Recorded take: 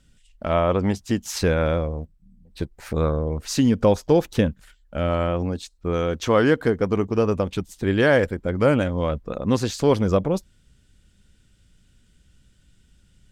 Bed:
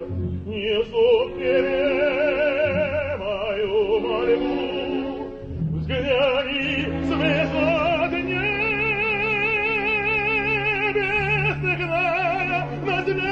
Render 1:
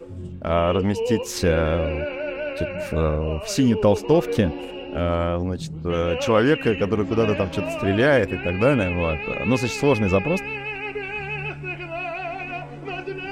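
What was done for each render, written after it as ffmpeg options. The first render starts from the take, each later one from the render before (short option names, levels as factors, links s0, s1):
-filter_complex "[1:a]volume=0.398[s0];[0:a][s0]amix=inputs=2:normalize=0"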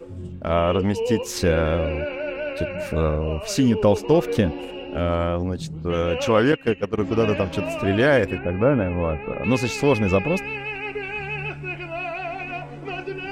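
-filter_complex "[0:a]asettb=1/sr,asplit=3[s0][s1][s2];[s0]atrim=end=6.524[s3];[s1]atrim=start=6.52:end=6.98,asetpts=PTS-STARTPTS,afade=t=in:d=0.004:c=qsin,afade=t=out:st=0.456:d=0.004:c=qsin,agate=range=0.2:threshold=0.1:ratio=16:release=100:detection=peak[s4];[s2]atrim=start=6.976[s5];[s3][s4]acrossfade=d=0.004:c1=hsin:c2=qsin[s6];[s6][s5]acrossfade=d=0.004:c1=qsin:c2=hsin,asettb=1/sr,asplit=3[s7][s8][s9];[s7]atrim=end=8.384[s10];[s8]atrim=start=8.38:end=9.44,asetpts=PTS-STARTPTS,afade=t=in:d=0.004:c=qsin,afade=t=out:st=1.056:d=0.004:c=qsin,lowpass=1500[s11];[s9]atrim=start=9.436[s12];[s10][s11]acrossfade=d=0.004:c1=hsin:c2=qsin[s13];[s13][s12]acrossfade=d=0.004:c1=qsin:c2=hsin"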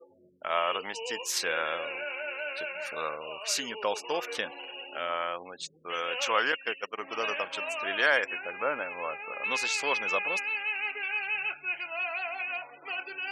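-af "afftfilt=real='re*gte(hypot(re,im),0.00794)':imag='im*gte(hypot(re,im),0.00794)':win_size=1024:overlap=0.75,highpass=1100"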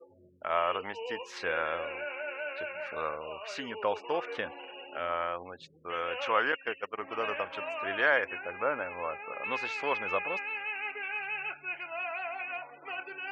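-af "lowpass=2100,equalizer=f=87:w=2.1:g=12.5"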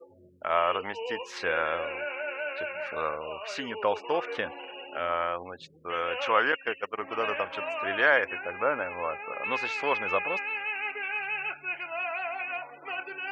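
-af "volume=1.5"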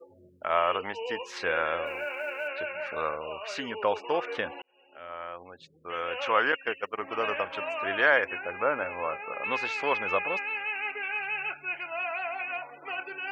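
-filter_complex "[0:a]asettb=1/sr,asplit=3[s0][s1][s2];[s0]atrim=end=1.864[s3];[s1]atrim=start=1.86:end=2.48,asetpts=PTS-STARTPTS,afade=t=in:d=0.004:c=qsin,afade=t=out:st=0.616:d=0.004:c=qsin,acrusher=bits=8:mode=log:mix=0:aa=0.000001[s4];[s2]atrim=start=2.476[s5];[s3][s4]acrossfade=d=0.004:c1=hsin:c2=qsin[s6];[s6][s5]acrossfade=d=0.004:c1=qsin:c2=hsin,asettb=1/sr,asplit=3[s7][s8][s9];[s7]atrim=end=8.754[s10];[s8]atrim=start=8.75:end=9.35,asetpts=PTS-STARTPTS,afade=t=in:d=0.004:c=qsin,afade=t=out:st=0.596:d=0.004:c=qsin,asplit=2[s11][s12];[s12]adelay=31,volume=0.251[s13];[s11][s13]amix=inputs=2:normalize=0,atrim=end_sample=26460[s14];[s9]atrim=start=9.346[s15];[s10][s14]acrossfade=d=0.004:c1=hsin:c2=qsin[s16];[s16][s15]acrossfade=d=0.004:c1=qsin:c2=hsin,asplit=2[s17][s18];[s17]atrim=end=4.62,asetpts=PTS-STARTPTS,afade=t=out:st=4.616:d=0.004:c=hsin[s19];[s18]atrim=start=4.62,asetpts=PTS-STARTPTS,afade=t=in:d=1.87[s20];[s19][s20]concat=n=2:v=0:a=1"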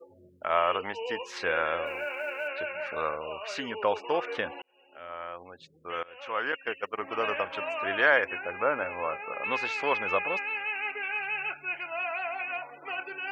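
-filter_complex "[0:a]asplit=2[s0][s1];[s0]atrim=end=6.03,asetpts=PTS-STARTPTS,afade=t=out:st=6.026:d=0.004:c=hsin:silence=0.0749894[s2];[s1]atrim=start=6.03,asetpts=PTS-STARTPTS,afade=t=in:d=0.85:silence=0.0749894[s3];[s2][s3]concat=n=2:v=0:a=1"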